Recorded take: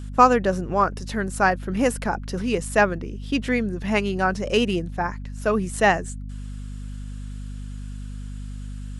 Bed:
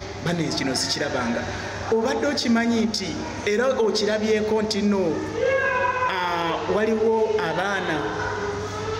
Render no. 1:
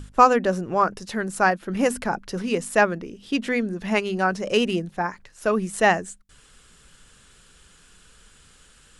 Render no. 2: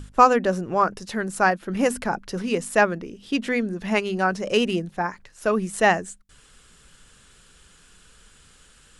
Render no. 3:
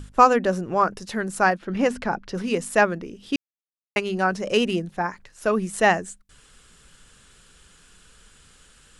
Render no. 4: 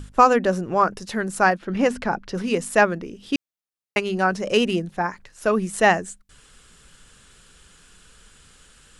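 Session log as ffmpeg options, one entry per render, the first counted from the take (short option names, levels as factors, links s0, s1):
-af "bandreject=f=50:t=h:w=6,bandreject=f=100:t=h:w=6,bandreject=f=150:t=h:w=6,bandreject=f=200:t=h:w=6,bandreject=f=250:t=h:w=6"
-af anull
-filter_complex "[0:a]asettb=1/sr,asplit=3[s0][s1][s2];[s0]atrim=end=1.574[s3];[s1]atrim=start=1.57:end=2.35,asetpts=PTS-STARTPTS,afade=t=in:d=0.004:c=qsin,afade=t=out:st=0.776:d=0.004:c=qsin,lowpass=5300[s4];[s2]atrim=start=2.346[s5];[s3][s4]acrossfade=d=0.004:c1=hsin:c2=qsin[s6];[s6][s5]acrossfade=d=0.004:c1=qsin:c2=hsin,asplit=3[s7][s8][s9];[s7]atrim=end=3.36,asetpts=PTS-STARTPTS,afade=t=out:st=3.356:d=0.004:c=hsin[s10];[s8]atrim=start=3.36:end=3.96,asetpts=PTS-STARTPTS,volume=0[s11];[s9]atrim=start=3.96,asetpts=PTS-STARTPTS,afade=t=in:d=0.004:c=hsin[s12];[s10][s11][s12]concat=n=3:v=0:a=1"
-af "volume=1.19,alimiter=limit=0.794:level=0:latency=1"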